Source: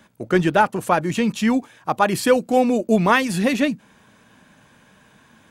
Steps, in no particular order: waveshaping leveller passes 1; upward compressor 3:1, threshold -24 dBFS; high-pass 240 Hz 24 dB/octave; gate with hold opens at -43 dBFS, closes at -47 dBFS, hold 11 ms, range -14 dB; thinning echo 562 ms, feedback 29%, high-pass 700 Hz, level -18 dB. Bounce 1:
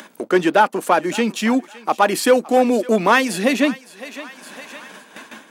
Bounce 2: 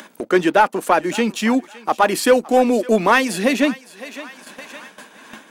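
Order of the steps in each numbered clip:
waveshaping leveller > thinning echo > gate with hold > high-pass > upward compressor; high-pass > waveshaping leveller > thinning echo > gate with hold > upward compressor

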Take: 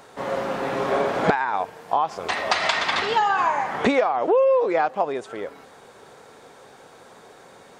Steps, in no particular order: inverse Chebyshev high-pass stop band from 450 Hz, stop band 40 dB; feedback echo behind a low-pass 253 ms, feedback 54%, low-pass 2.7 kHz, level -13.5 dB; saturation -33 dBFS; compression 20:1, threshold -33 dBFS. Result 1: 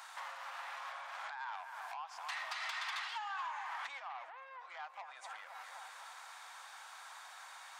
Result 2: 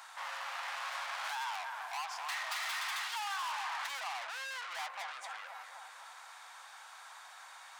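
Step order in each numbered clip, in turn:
feedback echo behind a low-pass > compression > saturation > inverse Chebyshev high-pass; feedback echo behind a low-pass > saturation > inverse Chebyshev high-pass > compression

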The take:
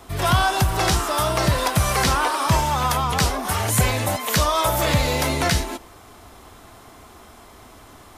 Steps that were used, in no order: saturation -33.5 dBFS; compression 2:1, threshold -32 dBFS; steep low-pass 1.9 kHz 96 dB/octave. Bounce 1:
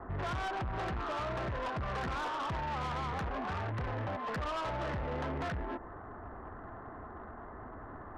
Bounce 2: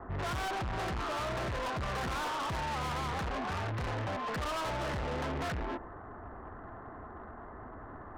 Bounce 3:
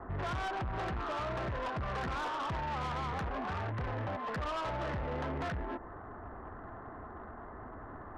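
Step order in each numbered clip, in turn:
steep low-pass > compression > saturation; steep low-pass > saturation > compression; compression > steep low-pass > saturation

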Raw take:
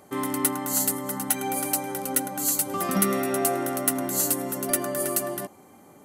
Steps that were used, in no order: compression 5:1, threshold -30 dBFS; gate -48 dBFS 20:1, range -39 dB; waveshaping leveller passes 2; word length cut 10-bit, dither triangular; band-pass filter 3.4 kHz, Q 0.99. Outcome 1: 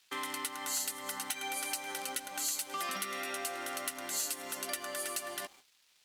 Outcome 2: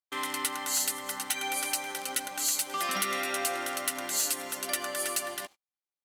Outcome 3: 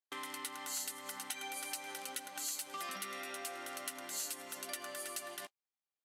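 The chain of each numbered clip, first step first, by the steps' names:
gate > compression > word length cut > band-pass filter > waveshaping leveller; word length cut > band-pass filter > compression > waveshaping leveller > gate; word length cut > waveshaping leveller > compression > band-pass filter > gate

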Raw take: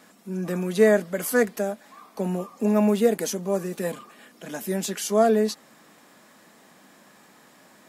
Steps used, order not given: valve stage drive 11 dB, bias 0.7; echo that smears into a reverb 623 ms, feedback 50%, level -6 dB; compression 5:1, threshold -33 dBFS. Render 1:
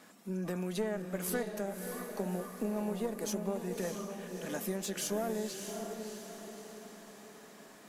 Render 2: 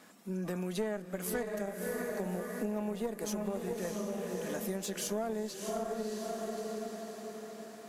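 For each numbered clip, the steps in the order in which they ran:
valve stage > compression > echo that smears into a reverb; echo that smears into a reverb > valve stage > compression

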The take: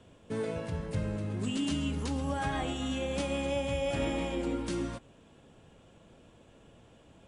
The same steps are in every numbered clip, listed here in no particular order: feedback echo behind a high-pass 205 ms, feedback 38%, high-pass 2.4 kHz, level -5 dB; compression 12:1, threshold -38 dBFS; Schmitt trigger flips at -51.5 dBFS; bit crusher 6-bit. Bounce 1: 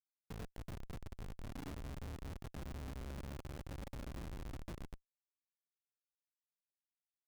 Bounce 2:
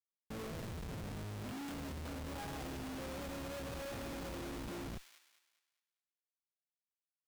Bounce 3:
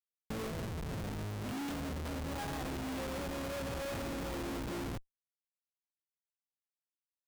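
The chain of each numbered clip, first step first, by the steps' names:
feedback echo behind a high-pass > compression > bit crusher > Schmitt trigger; bit crusher > compression > Schmitt trigger > feedback echo behind a high-pass; feedback echo behind a high-pass > bit crusher > Schmitt trigger > compression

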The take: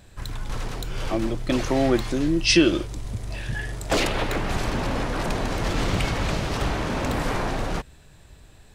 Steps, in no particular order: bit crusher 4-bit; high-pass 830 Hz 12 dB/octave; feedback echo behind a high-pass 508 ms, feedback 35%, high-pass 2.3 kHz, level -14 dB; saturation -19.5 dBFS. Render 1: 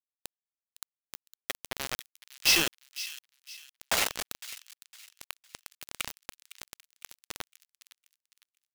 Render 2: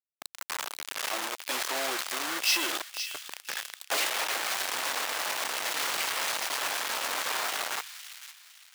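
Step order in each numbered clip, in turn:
high-pass > saturation > bit crusher > feedback echo behind a high-pass; bit crusher > feedback echo behind a high-pass > saturation > high-pass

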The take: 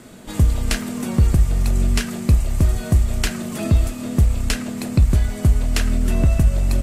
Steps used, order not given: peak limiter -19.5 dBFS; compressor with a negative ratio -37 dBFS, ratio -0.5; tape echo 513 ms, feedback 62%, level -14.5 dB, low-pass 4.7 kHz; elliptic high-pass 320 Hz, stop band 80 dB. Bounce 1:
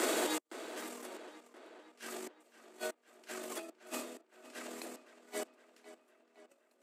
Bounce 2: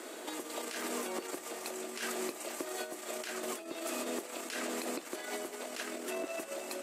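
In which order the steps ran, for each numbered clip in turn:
compressor with a negative ratio > tape echo > peak limiter > elliptic high-pass; tape echo > peak limiter > elliptic high-pass > compressor with a negative ratio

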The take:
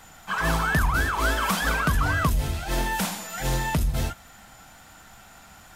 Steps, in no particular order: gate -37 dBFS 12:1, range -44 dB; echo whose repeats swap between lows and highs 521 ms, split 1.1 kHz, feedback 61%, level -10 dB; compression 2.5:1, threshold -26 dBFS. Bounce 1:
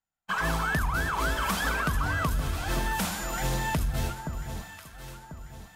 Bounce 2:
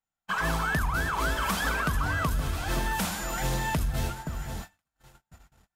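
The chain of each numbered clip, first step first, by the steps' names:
gate > echo whose repeats swap between lows and highs > compression; echo whose repeats swap between lows and highs > compression > gate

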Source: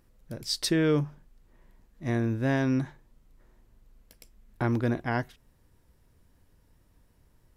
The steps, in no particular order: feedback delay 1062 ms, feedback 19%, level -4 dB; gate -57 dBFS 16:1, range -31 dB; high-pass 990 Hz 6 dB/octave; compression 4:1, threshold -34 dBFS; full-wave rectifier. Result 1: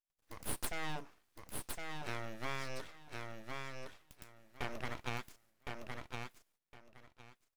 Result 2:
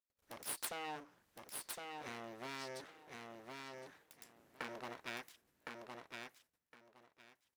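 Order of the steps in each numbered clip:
gate > high-pass > compression > feedback delay > full-wave rectifier; compression > gate > feedback delay > full-wave rectifier > high-pass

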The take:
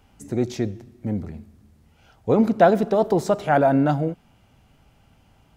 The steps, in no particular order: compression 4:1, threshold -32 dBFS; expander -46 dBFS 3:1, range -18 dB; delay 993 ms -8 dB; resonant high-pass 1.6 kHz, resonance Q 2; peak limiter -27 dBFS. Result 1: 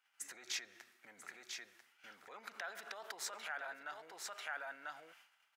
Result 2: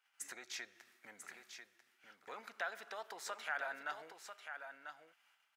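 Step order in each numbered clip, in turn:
delay > peak limiter > expander > compression > resonant high-pass; expander > compression > resonant high-pass > peak limiter > delay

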